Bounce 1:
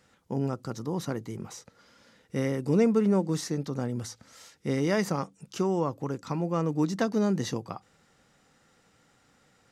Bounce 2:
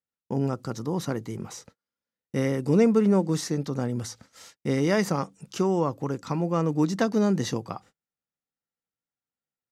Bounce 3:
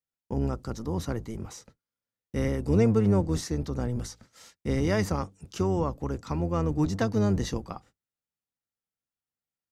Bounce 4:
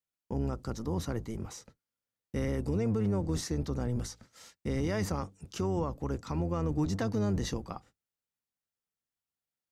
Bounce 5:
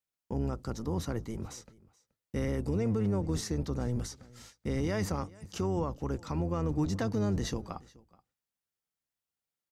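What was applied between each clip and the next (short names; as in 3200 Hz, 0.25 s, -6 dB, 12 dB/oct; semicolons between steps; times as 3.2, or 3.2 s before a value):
gate -52 dBFS, range -38 dB; gain +3 dB
octaver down 1 oct, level -1 dB; gain -3.5 dB
limiter -21 dBFS, peak gain reduction 9 dB; gain -1.5 dB
echo 0.427 s -23 dB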